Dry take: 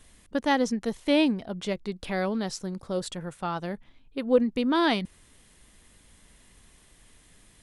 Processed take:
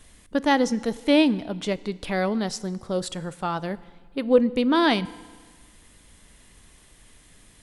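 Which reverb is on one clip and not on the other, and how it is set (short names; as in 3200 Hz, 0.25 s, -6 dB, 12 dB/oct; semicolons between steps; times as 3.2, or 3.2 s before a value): FDN reverb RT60 1.5 s, low-frequency decay 1×, high-frequency decay 0.9×, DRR 17 dB; gain +3.5 dB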